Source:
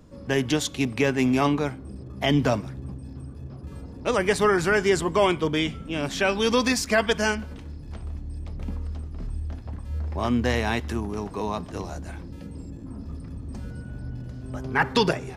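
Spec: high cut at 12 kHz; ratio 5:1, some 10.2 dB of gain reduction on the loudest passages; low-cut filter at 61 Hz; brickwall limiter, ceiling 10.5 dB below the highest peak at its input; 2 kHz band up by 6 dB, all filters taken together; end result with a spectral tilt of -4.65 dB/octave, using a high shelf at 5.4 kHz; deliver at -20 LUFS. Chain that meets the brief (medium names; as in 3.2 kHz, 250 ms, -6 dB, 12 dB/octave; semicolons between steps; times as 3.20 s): high-pass 61 Hz; low-pass 12 kHz; peaking EQ 2 kHz +7 dB; treble shelf 5.4 kHz +6.5 dB; compression 5:1, threshold -25 dBFS; trim +14.5 dB; peak limiter -7.5 dBFS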